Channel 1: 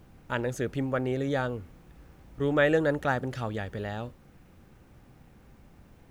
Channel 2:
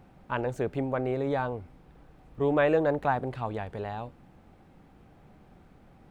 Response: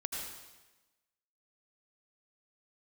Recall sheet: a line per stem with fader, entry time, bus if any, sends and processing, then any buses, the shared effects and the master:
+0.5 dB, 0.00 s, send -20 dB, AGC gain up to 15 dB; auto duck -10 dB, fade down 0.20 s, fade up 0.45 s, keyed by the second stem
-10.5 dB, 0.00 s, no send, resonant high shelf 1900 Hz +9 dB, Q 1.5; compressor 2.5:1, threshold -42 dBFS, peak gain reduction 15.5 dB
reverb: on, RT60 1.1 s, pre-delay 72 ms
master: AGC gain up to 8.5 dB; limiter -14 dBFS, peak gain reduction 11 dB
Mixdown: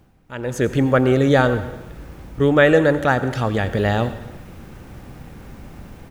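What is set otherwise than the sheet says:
stem 2: missing resonant high shelf 1900 Hz +9 dB, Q 1.5; master: missing limiter -14 dBFS, peak gain reduction 11 dB

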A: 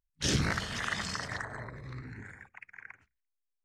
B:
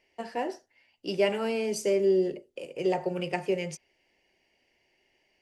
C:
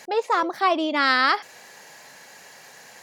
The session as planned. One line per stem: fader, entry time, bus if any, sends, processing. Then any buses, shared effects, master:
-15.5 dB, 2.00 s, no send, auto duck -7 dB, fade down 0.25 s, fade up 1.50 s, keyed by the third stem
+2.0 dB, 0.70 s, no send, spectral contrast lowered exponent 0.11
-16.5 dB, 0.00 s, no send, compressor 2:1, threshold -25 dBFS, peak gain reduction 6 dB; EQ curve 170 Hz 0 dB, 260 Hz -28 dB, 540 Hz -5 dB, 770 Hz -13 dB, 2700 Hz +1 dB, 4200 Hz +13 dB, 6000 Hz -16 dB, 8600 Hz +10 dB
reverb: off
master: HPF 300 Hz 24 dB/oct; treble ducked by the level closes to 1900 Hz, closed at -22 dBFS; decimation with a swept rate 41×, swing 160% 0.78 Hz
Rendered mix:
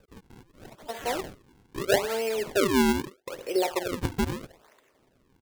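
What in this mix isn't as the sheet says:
stem A: entry 2.00 s -> 3.10 s; stem B: missing spectral contrast lowered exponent 0.11

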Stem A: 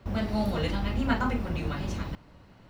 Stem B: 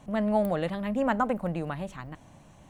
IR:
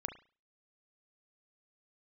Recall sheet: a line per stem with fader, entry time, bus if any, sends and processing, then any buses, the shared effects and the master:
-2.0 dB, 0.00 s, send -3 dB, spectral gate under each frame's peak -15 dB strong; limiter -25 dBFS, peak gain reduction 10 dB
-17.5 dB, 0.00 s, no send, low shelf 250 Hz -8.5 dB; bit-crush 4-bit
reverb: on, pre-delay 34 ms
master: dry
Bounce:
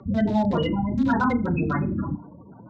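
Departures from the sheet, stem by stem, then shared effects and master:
stem A -2.0 dB -> +9.0 dB; master: extra speaker cabinet 150–6300 Hz, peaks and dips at 580 Hz -5 dB, 960 Hz +3 dB, 3800 Hz +8 dB

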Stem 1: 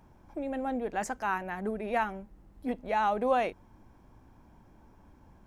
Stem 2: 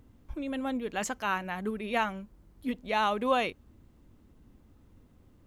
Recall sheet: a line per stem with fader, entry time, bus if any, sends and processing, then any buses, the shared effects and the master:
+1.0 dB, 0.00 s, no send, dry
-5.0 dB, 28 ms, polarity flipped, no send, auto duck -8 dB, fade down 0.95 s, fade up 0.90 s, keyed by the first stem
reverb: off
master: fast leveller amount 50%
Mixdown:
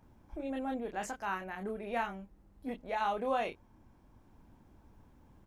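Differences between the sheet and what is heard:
stem 1 +1.0 dB -> -6.0 dB; master: missing fast leveller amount 50%

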